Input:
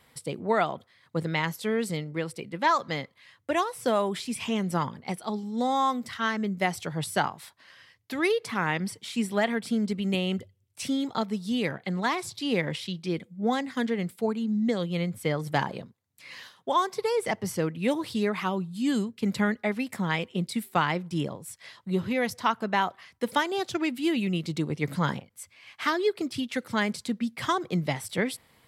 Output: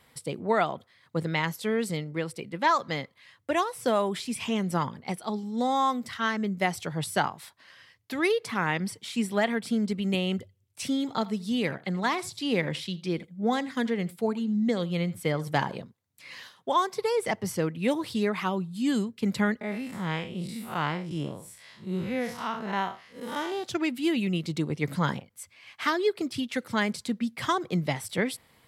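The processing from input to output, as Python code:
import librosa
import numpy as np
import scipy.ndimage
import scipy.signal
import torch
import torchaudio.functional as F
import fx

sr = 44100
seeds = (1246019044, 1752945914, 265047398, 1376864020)

y = fx.echo_single(x, sr, ms=81, db=-20.0, at=(10.99, 15.8))
y = fx.spec_blur(y, sr, span_ms=130.0, at=(19.61, 23.64))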